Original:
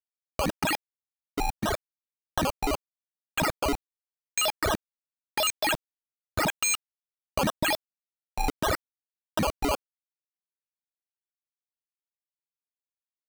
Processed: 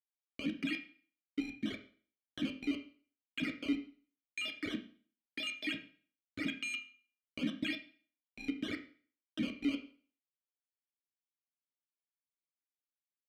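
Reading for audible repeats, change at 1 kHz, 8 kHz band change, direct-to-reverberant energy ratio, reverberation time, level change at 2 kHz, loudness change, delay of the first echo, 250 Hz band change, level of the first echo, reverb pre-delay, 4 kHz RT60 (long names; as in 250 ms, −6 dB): no echo audible, −28.5 dB, −25.0 dB, 5.0 dB, 0.45 s, −9.5 dB, −10.5 dB, no echo audible, −2.5 dB, no echo audible, 10 ms, 0.45 s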